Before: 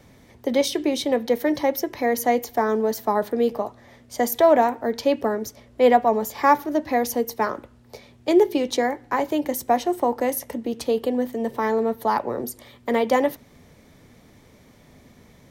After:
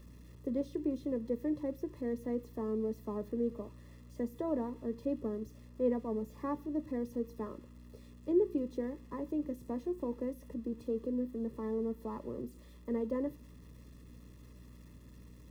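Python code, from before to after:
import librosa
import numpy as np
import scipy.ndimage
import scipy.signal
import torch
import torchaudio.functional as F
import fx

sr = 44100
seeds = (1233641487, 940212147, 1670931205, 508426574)

y = x + 0.5 * 10.0 ** (-19.0 / 20.0) * np.diff(np.sign(x), prepend=np.sign(x[:1]))
y = np.convolve(y, np.full(58, 1.0 / 58))[:len(y)]
y = fx.add_hum(y, sr, base_hz=60, snr_db=17)
y = F.gain(torch.from_numpy(y), -8.0).numpy()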